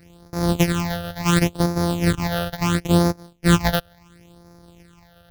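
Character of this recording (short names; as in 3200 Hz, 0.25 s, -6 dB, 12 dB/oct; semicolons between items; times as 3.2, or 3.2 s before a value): a buzz of ramps at a fixed pitch in blocks of 256 samples; phasing stages 8, 0.72 Hz, lowest notch 290–2900 Hz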